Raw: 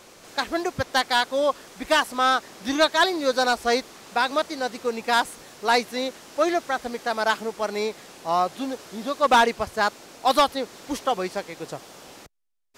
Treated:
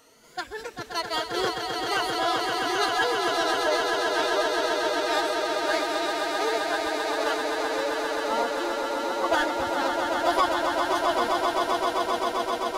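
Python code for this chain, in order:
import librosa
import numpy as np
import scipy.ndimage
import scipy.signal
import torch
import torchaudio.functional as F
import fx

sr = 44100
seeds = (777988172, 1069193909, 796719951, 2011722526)

y = fx.spec_ripple(x, sr, per_octave=1.9, drift_hz=1.1, depth_db=11)
y = fx.echo_swell(y, sr, ms=131, loudest=8, wet_db=-6)
y = fx.pitch_keep_formants(y, sr, semitones=4.5)
y = y * librosa.db_to_amplitude(-9.0)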